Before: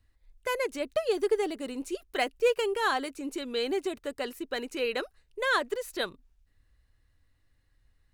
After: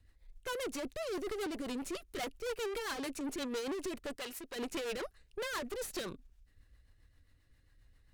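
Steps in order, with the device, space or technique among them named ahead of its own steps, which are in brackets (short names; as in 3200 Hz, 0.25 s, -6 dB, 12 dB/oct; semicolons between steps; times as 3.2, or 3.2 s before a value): overdriven rotary cabinet (tube stage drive 43 dB, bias 0.7; rotary speaker horn 7.5 Hz); 4.16–4.56 low shelf 490 Hz -10.5 dB; gain +8.5 dB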